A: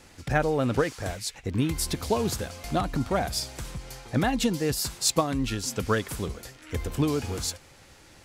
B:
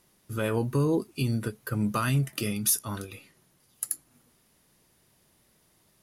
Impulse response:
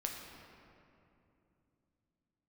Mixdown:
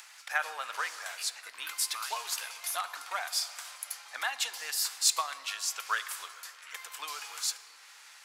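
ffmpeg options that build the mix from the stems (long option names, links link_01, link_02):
-filter_complex "[0:a]acompressor=mode=upward:threshold=-43dB:ratio=2.5,volume=-3dB,asplit=2[link_01][link_02];[link_02]volume=-7.5dB[link_03];[1:a]acompressor=threshold=-29dB:ratio=3,volume=-5.5dB[link_04];[2:a]atrim=start_sample=2205[link_05];[link_03][link_05]afir=irnorm=-1:irlink=0[link_06];[link_01][link_04][link_06]amix=inputs=3:normalize=0,highpass=frequency=1000:width=0.5412,highpass=frequency=1000:width=1.3066"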